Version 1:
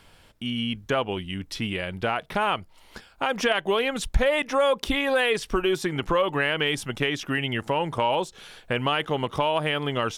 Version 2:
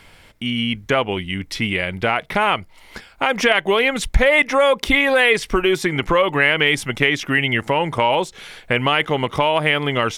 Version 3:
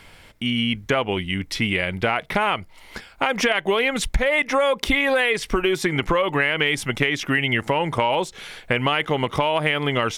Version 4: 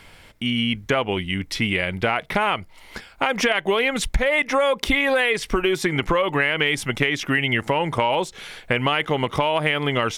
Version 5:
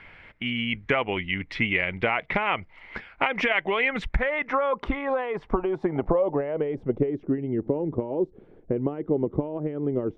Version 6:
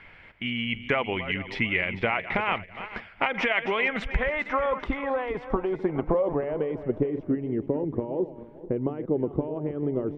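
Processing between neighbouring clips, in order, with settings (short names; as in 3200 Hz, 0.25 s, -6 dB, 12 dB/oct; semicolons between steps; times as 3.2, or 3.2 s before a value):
bell 2100 Hz +9 dB 0.3 oct; gain +6 dB
compressor, threshold -16 dBFS, peak gain reduction 8.5 dB
nothing audible
harmonic-percussive split harmonic -5 dB; low-pass sweep 2100 Hz -> 360 Hz, 3.78–7.41; dynamic EQ 1600 Hz, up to -6 dB, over -35 dBFS, Q 1.7; gain -2 dB
regenerating reverse delay 0.222 s, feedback 53%, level -12 dB; gain -1.5 dB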